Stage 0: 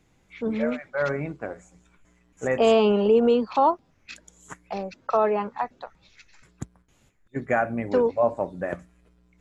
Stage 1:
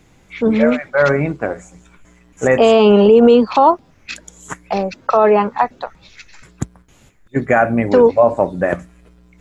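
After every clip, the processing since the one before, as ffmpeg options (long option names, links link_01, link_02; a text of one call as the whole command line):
ffmpeg -i in.wav -af "alimiter=level_in=13.5dB:limit=-1dB:release=50:level=0:latency=1,volume=-1dB" out.wav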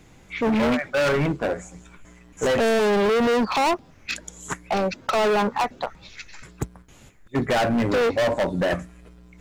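ffmpeg -i in.wav -af "volume=18.5dB,asoftclip=hard,volume=-18.5dB" out.wav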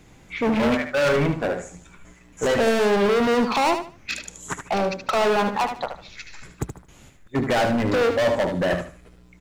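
ffmpeg -i in.wav -af "aecho=1:1:75|150|225:0.398|0.0995|0.0249" out.wav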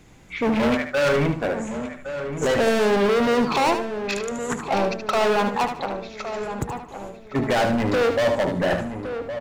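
ffmpeg -i in.wav -filter_complex "[0:a]asplit=2[link_01][link_02];[link_02]adelay=1114,lowpass=frequency=1700:poles=1,volume=-9dB,asplit=2[link_03][link_04];[link_04]adelay=1114,lowpass=frequency=1700:poles=1,volume=0.53,asplit=2[link_05][link_06];[link_06]adelay=1114,lowpass=frequency=1700:poles=1,volume=0.53,asplit=2[link_07][link_08];[link_08]adelay=1114,lowpass=frequency=1700:poles=1,volume=0.53,asplit=2[link_09][link_10];[link_10]adelay=1114,lowpass=frequency=1700:poles=1,volume=0.53,asplit=2[link_11][link_12];[link_12]adelay=1114,lowpass=frequency=1700:poles=1,volume=0.53[link_13];[link_01][link_03][link_05][link_07][link_09][link_11][link_13]amix=inputs=7:normalize=0" out.wav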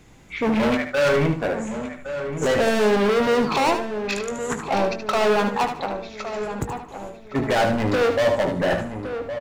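ffmpeg -i in.wav -filter_complex "[0:a]asplit=2[link_01][link_02];[link_02]adelay=19,volume=-11dB[link_03];[link_01][link_03]amix=inputs=2:normalize=0" out.wav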